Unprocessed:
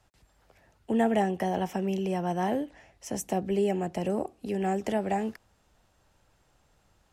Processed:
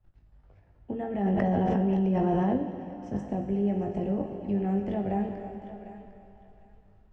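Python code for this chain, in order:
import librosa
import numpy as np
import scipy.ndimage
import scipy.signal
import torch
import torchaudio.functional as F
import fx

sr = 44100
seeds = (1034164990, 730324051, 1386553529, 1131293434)

y = fx.riaa(x, sr, side='playback')
y = fx.level_steps(y, sr, step_db=13)
y = fx.air_absorb(y, sr, metres=100.0)
y = fx.doubler(y, sr, ms=20.0, db=-6)
y = fx.echo_thinned(y, sr, ms=754, feedback_pct=24, hz=760.0, wet_db=-11.5)
y = fx.rev_plate(y, sr, seeds[0], rt60_s=2.8, hf_ratio=0.9, predelay_ms=0, drr_db=3.5)
y = fx.env_flatten(y, sr, amount_pct=100, at=(1.25, 2.57))
y = F.gain(torch.from_numpy(y), -4.0).numpy()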